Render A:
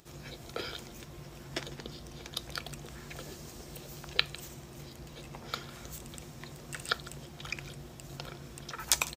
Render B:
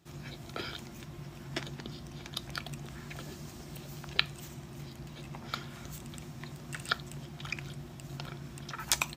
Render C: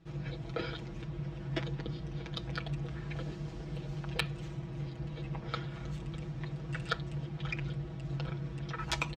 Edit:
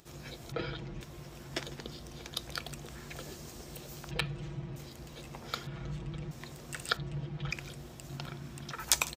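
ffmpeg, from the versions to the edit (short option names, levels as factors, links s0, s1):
-filter_complex "[2:a]asplit=4[s0][s1][s2][s3];[0:a]asplit=6[s4][s5][s6][s7][s8][s9];[s4]atrim=end=0.522[s10];[s0]atrim=start=0.518:end=1.012[s11];[s5]atrim=start=1.008:end=4.112[s12];[s1]atrim=start=4.108:end=4.762[s13];[s6]atrim=start=4.758:end=5.672[s14];[s2]atrim=start=5.668:end=6.312[s15];[s7]atrim=start=6.308:end=6.972[s16];[s3]atrim=start=6.968:end=7.512[s17];[s8]atrim=start=7.508:end=8.092[s18];[1:a]atrim=start=8.088:end=8.732[s19];[s9]atrim=start=8.728[s20];[s10][s11]acrossfade=d=0.004:c1=hsin:c2=hsin[s21];[s21][s12]acrossfade=d=0.004:c1=hsin:c2=hsin[s22];[s22][s13]acrossfade=d=0.004:c1=hsin:c2=hsin[s23];[s23][s14]acrossfade=d=0.004:c1=hsin:c2=hsin[s24];[s24][s15]acrossfade=d=0.004:c1=hsin:c2=hsin[s25];[s25][s16]acrossfade=d=0.004:c1=hsin:c2=hsin[s26];[s26][s17]acrossfade=d=0.004:c1=hsin:c2=hsin[s27];[s27][s18]acrossfade=d=0.004:c1=hsin:c2=hsin[s28];[s28][s19]acrossfade=d=0.004:c1=hsin:c2=hsin[s29];[s29][s20]acrossfade=d=0.004:c1=hsin:c2=hsin"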